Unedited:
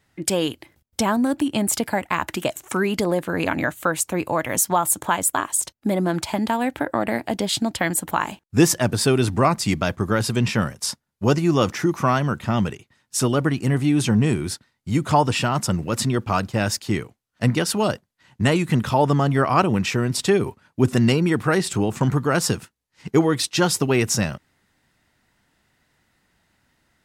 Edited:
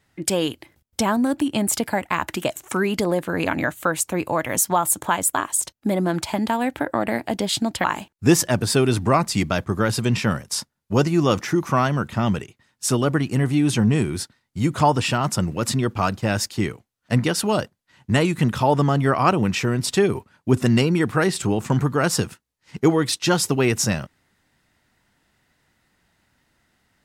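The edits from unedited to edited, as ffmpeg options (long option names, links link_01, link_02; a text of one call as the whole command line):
ffmpeg -i in.wav -filter_complex "[0:a]asplit=2[link_01][link_02];[link_01]atrim=end=7.842[link_03];[link_02]atrim=start=8.148[link_04];[link_03][link_04]acrossfade=duration=0.004:curve1=hsin:curve2=hsin" out.wav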